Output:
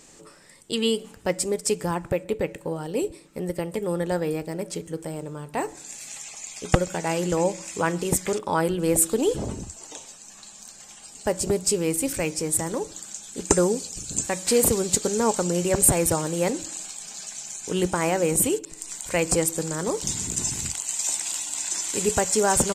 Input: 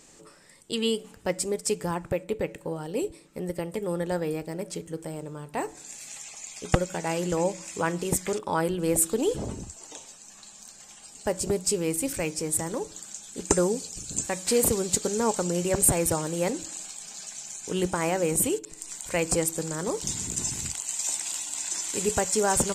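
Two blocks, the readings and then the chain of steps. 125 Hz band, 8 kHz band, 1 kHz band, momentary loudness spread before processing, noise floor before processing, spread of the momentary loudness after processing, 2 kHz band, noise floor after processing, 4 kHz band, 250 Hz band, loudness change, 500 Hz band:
+3.0 dB, +3.0 dB, +3.0 dB, 15 LU, −51 dBFS, 15 LU, +3.0 dB, −48 dBFS, +3.0 dB, +3.0 dB, +3.0 dB, +3.0 dB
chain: slap from a distant wall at 22 metres, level −29 dB
level +3 dB

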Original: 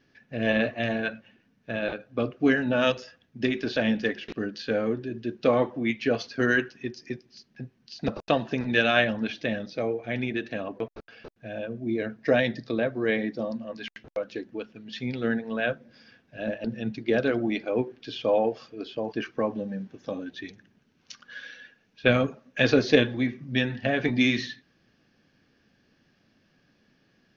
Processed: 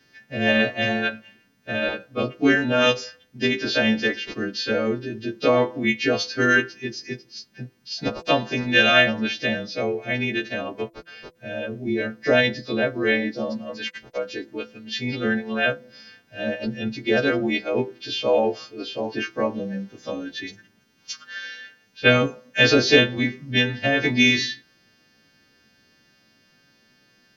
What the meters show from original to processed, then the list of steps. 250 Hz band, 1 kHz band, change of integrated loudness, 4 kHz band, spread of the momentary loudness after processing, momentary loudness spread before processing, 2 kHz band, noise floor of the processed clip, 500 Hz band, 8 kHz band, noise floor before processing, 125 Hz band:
+3.0 dB, +5.0 dB, +5.0 dB, +10.0 dB, 17 LU, 16 LU, +7.0 dB, −61 dBFS, +3.5 dB, can't be measured, −67 dBFS, +3.0 dB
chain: every partial snapped to a pitch grid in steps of 2 semitones
hum removal 167.6 Hz, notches 13
level +4 dB

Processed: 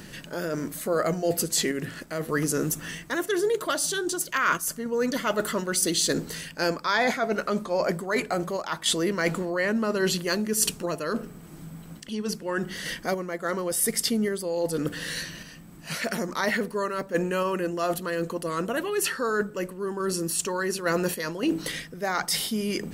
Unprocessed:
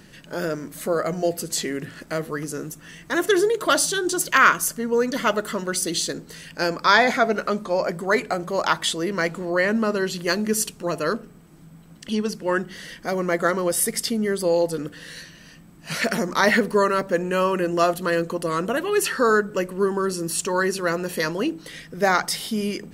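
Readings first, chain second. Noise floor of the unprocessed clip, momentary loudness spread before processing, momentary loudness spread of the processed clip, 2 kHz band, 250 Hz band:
−47 dBFS, 11 LU, 8 LU, −6.0 dB, −3.0 dB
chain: high-shelf EQ 9,400 Hz +5 dB
reversed playback
downward compressor 6 to 1, threshold −29 dBFS, peak gain reduction 17.5 dB
reversed playback
sample-and-hold tremolo
level +7.5 dB

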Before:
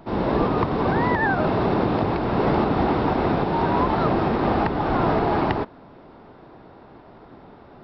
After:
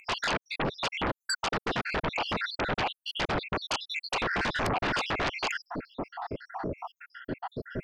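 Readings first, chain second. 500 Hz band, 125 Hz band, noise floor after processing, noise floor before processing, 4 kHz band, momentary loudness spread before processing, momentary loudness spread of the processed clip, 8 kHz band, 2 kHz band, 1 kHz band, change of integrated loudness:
−12.0 dB, −13.5 dB, below −85 dBFS, −47 dBFS, +6.0 dB, 2 LU, 10 LU, can't be measured, −1.5 dB, −9.5 dB, −10.0 dB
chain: time-frequency cells dropped at random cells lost 81%
downward compressor 3 to 1, threshold −34 dBFS, peak gain reduction 12.5 dB
sine wavefolder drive 19 dB, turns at −19 dBFS
level −6 dB

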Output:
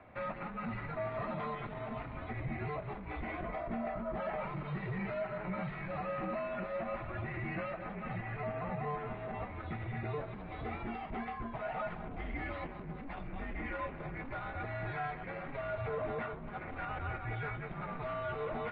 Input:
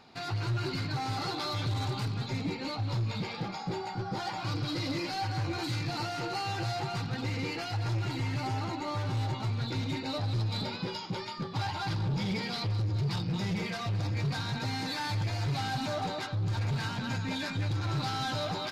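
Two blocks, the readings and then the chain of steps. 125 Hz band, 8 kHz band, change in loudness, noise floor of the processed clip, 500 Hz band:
−11.5 dB, below −35 dB, −7.0 dB, −45 dBFS, +0.5 dB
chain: high-pass filter 130 Hz 12 dB per octave
brickwall limiter −29.5 dBFS, peak gain reduction 6.5 dB
single-sideband voice off tune −150 Hz 200–2,500 Hz
level +1.5 dB

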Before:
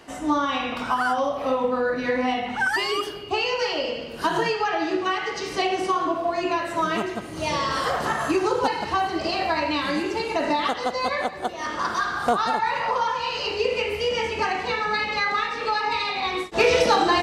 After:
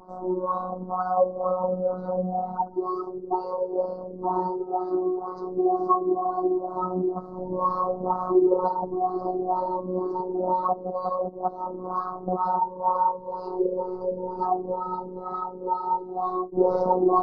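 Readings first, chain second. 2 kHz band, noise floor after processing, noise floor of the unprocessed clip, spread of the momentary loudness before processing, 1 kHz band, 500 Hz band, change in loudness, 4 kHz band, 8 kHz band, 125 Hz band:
below −25 dB, −39 dBFS, −35 dBFS, 4 LU, −1.5 dB, −0.5 dB, −3.0 dB, below −35 dB, below −35 dB, +0.5 dB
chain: pitch vibrato 0.35 Hz 14 cents
elliptic band-stop filter 1,100–4,600 Hz, stop band 40 dB
high-shelf EQ 4,000 Hz −9.5 dB
auto-filter low-pass sine 2.1 Hz 340–1,900 Hz
phases set to zero 183 Hz

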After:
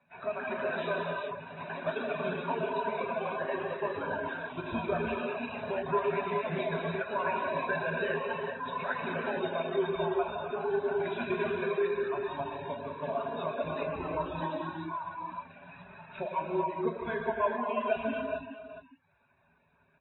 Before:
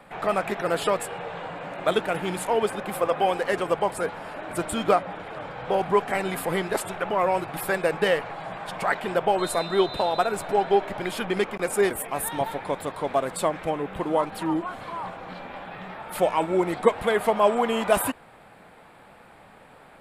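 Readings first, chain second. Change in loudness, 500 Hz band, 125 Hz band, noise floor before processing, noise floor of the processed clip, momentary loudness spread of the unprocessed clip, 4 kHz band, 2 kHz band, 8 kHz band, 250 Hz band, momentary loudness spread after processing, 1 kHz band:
−7.5 dB, −7.5 dB, −5.0 dB, −51 dBFS, −68 dBFS, 12 LU, −11.5 dB, −5.0 dB, below −40 dB, −7.5 dB, 8 LU, −8.0 dB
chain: spectral dynamics exaggerated over time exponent 1.5
mains-hum notches 50/100/150/200/250/300/350 Hz
reverb reduction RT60 1.1 s
high-shelf EQ 3,300 Hz −6 dB
single-tap delay 413 ms −20.5 dB
downward compressor 2.5 to 1, threshold −36 dBFS, peak gain reduction 15 dB
high-pass filter 71 Hz 12 dB per octave
reverb whose tail is shaped and stops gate 470 ms flat, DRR −3.5 dB
delay with pitch and tempo change per echo 216 ms, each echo +4 semitones, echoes 3, each echo −6 dB
EQ curve with evenly spaced ripples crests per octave 1.5, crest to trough 14 dB
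reverb reduction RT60 0.51 s
level −2 dB
AAC 16 kbit/s 22,050 Hz

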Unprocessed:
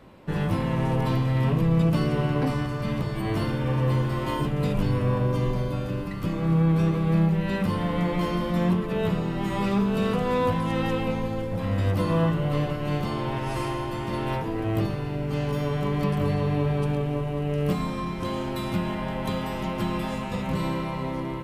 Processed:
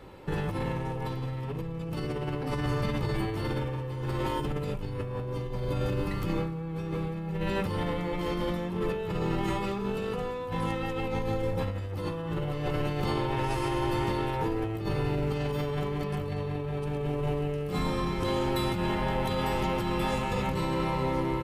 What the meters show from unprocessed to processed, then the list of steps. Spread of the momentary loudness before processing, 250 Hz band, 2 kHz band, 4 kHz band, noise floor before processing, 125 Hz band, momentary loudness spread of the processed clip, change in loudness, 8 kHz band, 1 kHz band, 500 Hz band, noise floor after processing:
7 LU, −6.5 dB, −2.5 dB, −1.5 dB, −31 dBFS, −7.0 dB, 5 LU, −5.0 dB, can't be measured, −2.5 dB, −2.5 dB, −35 dBFS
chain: comb filter 2.3 ms, depth 46%
compressor whose output falls as the input rises −29 dBFS, ratio −1
level −1.5 dB

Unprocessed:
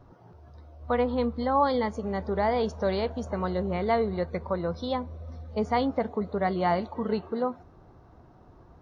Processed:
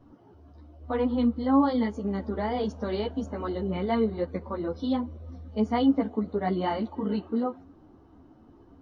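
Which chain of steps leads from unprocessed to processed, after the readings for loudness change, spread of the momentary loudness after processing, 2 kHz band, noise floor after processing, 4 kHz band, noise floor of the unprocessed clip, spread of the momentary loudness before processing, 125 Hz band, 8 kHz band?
0.0 dB, 10 LU, −4.5 dB, −55 dBFS, −1.0 dB, −54 dBFS, 7 LU, −1.0 dB, can't be measured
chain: hollow resonant body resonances 280/3,000 Hz, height 15 dB, ringing for 50 ms
string-ensemble chorus
level −1.5 dB

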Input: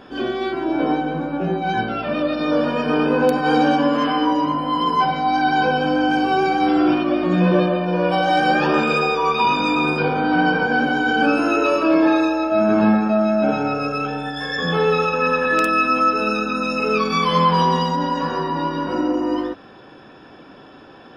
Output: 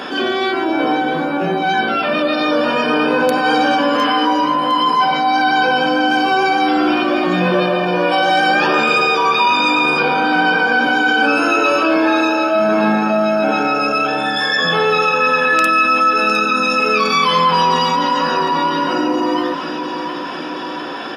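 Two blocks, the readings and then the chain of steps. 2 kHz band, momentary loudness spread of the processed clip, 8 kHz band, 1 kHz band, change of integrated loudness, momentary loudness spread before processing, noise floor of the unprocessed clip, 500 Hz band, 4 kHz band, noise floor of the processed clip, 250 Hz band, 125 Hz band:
+7.0 dB, 5 LU, can't be measured, +5.0 dB, +4.0 dB, 7 LU, −43 dBFS, +2.5 dB, +8.5 dB, −24 dBFS, +0.5 dB, −3.0 dB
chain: sub-octave generator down 2 octaves, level −5 dB
high-pass filter 170 Hz 24 dB per octave
tilt shelving filter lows −5 dB, about 670 Hz
floating-point word with a short mantissa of 6 bits
repeating echo 708 ms, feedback 51%, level −15 dB
downsampling to 32,000 Hz
envelope flattener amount 50%

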